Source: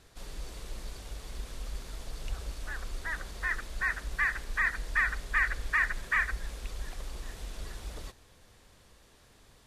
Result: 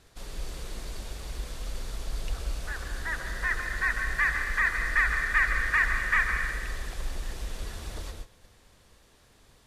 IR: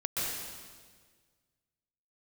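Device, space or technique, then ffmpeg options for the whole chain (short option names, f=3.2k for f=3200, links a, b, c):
keyed gated reverb: -filter_complex "[0:a]asplit=3[a][b][c];[1:a]atrim=start_sample=2205[d];[b][d]afir=irnorm=-1:irlink=0[e];[c]apad=whole_len=426281[f];[e][f]sidechaingate=range=-33dB:threshold=-54dB:ratio=16:detection=peak,volume=-7dB[g];[a][g]amix=inputs=2:normalize=0"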